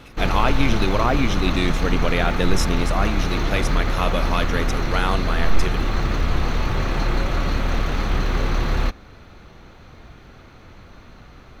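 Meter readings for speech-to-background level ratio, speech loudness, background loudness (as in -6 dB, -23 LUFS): 0.0 dB, -24.5 LUFS, -24.5 LUFS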